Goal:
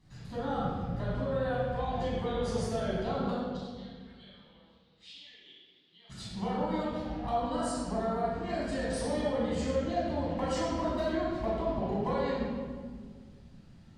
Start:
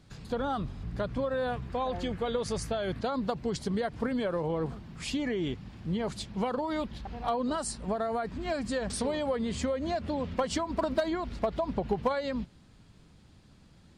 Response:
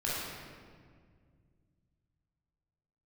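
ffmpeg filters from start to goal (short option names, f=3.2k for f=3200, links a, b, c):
-filter_complex "[0:a]asplit=3[a][b][c];[a]afade=t=out:st=3.3:d=0.02[d];[b]bandpass=f=3.7k:t=q:w=5:csg=0,afade=t=in:st=3.3:d=0.02,afade=t=out:st=6.09:d=0.02[e];[c]afade=t=in:st=6.09:d=0.02[f];[d][e][f]amix=inputs=3:normalize=0[g];[1:a]atrim=start_sample=2205,asetrate=52920,aresample=44100[h];[g][h]afir=irnorm=-1:irlink=0,volume=-7dB"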